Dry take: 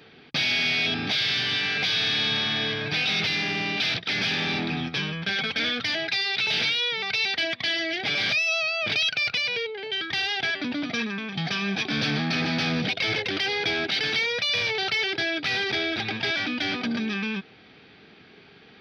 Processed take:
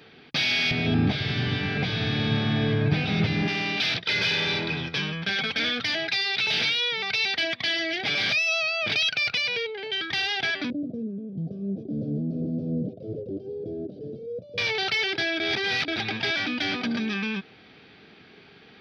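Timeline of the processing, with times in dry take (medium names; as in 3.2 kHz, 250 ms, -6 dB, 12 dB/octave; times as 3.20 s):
0.71–3.48 s: tilt EQ -4.5 dB/octave
4.04–4.95 s: comb 2 ms
10.70–14.58 s: elliptic low-pass 570 Hz
15.40–15.88 s: reverse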